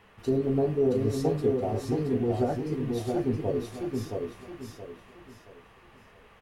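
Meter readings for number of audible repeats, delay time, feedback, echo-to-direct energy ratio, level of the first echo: 4, 0.671 s, 32%, -3.5 dB, -4.0 dB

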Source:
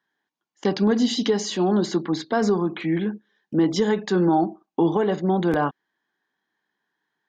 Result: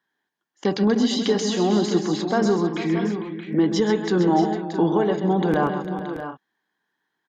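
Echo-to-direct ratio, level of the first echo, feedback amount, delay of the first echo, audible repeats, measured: -5.0 dB, -9.0 dB, no steady repeat, 0.131 s, 5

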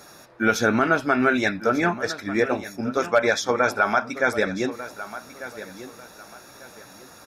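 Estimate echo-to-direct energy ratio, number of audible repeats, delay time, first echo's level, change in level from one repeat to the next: -14.0 dB, 2, 1.195 s, -14.5 dB, -11.0 dB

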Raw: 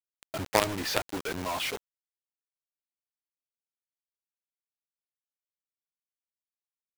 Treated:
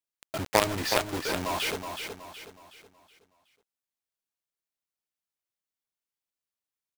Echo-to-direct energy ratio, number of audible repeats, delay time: -6.0 dB, 4, 0.371 s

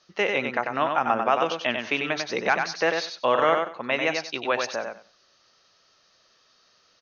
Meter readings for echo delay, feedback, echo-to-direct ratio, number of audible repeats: 95 ms, 18%, -5.0 dB, 3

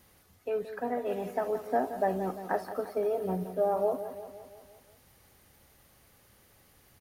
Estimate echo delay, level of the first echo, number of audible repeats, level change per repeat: 0.173 s, -11.5 dB, 5, -5.0 dB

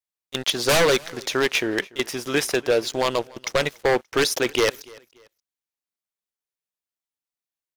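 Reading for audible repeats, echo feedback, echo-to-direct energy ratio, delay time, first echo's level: 2, 32%, -23.5 dB, 0.289 s, -24.0 dB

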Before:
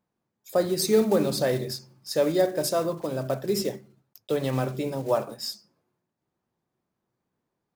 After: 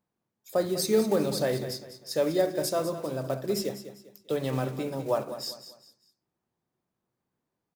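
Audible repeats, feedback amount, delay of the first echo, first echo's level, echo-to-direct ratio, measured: 3, 34%, 0.199 s, -12.0 dB, -11.5 dB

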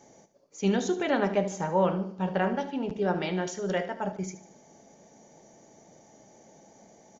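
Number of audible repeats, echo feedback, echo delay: 4, 45%, 75 ms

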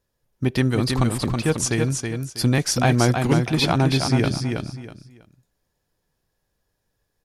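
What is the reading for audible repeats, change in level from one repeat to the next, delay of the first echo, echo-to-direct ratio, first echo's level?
3, -12.0 dB, 0.323 s, -4.5 dB, -5.0 dB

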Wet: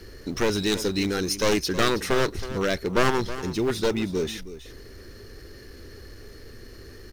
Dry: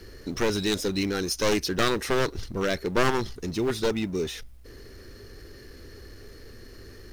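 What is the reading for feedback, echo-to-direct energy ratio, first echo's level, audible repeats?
no steady repeat, -13.5 dB, -13.5 dB, 1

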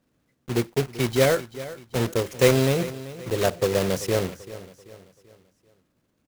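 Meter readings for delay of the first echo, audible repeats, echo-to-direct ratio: 0.387 s, 3, -15.0 dB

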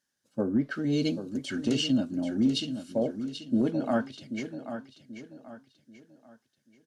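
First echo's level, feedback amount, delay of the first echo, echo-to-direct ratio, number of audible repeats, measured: -10.0 dB, 35%, 0.785 s, -9.5 dB, 3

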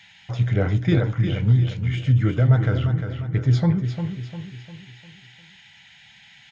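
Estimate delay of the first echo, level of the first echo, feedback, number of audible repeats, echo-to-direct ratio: 0.351 s, -8.0 dB, 44%, 4, -7.0 dB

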